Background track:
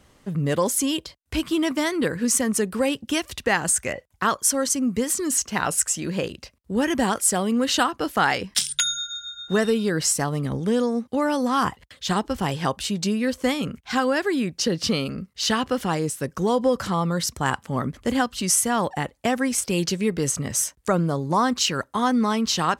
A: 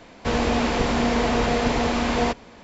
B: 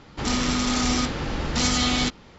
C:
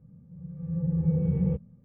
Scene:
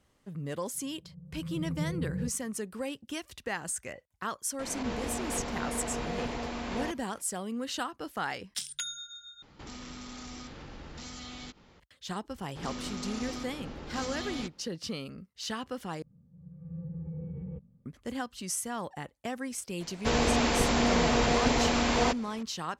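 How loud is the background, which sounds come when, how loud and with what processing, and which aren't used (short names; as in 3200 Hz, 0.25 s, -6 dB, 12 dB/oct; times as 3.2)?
background track -13.5 dB
0.73 add C -8.5 dB + LPF 1100 Hz
4.59 add A -14 dB + backwards sustainer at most 32 dB/s
9.42 replace with B -10 dB + compressor 3:1, threshold -34 dBFS
12.38 add B -17.5 dB + bell 420 Hz +5.5 dB 1.9 oct
16.02 replace with C -8.5 dB + limiter -24.5 dBFS
19.8 add A -4.5 dB + high shelf 4800 Hz +9.5 dB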